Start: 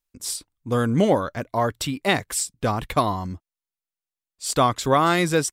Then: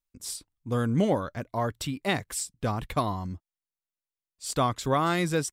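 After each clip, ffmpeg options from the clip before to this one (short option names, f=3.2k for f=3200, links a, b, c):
-af "bass=f=250:g=4,treble=f=4k:g=0,volume=-7dB"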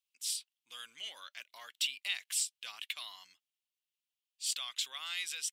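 -af "alimiter=limit=-21.5dB:level=0:latency=1:release=49,highpass=f=2.9k:t=q:w=3.5,volume=-1.5dB"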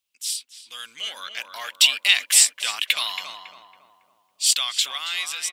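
-filter_complex "[0:a]dynaudnorm=f=240:g=11:m=10dB,asplit=2[a][b];[b]adelay=277,lowpass=f=1.3k:p=1,volume=-4dB,asplit=2[c][d];[d]adelay=277,lowpass=f=1.3k:p=1,volume=0.52,asplit=2[e][f];[f]adelay=277,lowpass=f=1.3k:p=1,volume=0.52,asplit=2[g][h];[h]adelay=277,lowpass=f=1.3k:p=1,volume=0.52,asplit=2[i][j];[j]adelay=277,lowpass=f=1.3k:p=1,volume=0.52,asplit=2[k][l];[l]adelay=277,lowpass=f=1.3k:p=1,volume=0.52,asplit=2[m][n];[n]adelay=277,lowpass=f=1.3k:p=1,volume=0.52[o];[a][c][e][g][i][k][m][o]amix=inputs=8:normalize=0,volume=8.5dB"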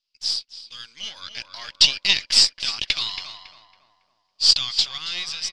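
-af "aeval=exprs='if(lt(val(0),0),0.447*val(0),val(0))':c=same,lowpass=f=4.9k:t=q:w=7.2,volume=-4dB"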